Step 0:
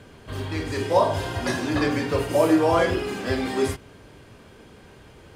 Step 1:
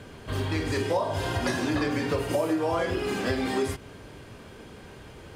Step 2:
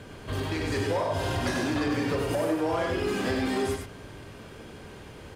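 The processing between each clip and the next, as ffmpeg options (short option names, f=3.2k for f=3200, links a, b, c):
-af "acompressor=threshold=-26dB:ratio=6,volume=2.5dB"
-filter_complex "[0:a]asoftclip=type=tanh:threshold=-22dB,asplit=2[a][b];[b]aecho=0:1:96:0.596[c];[a][c]amix=inputs=2:normalize=0"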